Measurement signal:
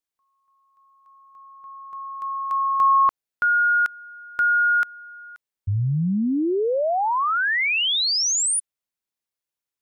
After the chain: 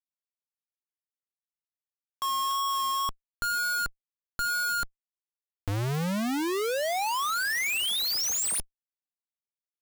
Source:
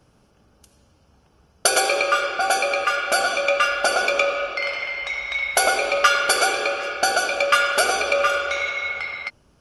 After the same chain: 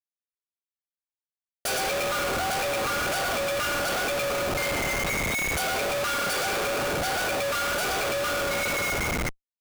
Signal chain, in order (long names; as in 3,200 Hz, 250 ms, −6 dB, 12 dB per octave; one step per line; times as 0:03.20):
tape wow and flutter 16 cents
comparator with hysteresis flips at −29 dBFS
level −4.5 dB